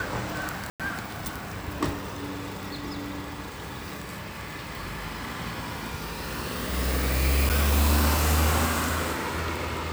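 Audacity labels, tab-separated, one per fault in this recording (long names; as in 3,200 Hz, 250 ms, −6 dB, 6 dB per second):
0.700000	0.800000	drop-out 97 ms
7.490000	7.500000	drop-out 8.6 ms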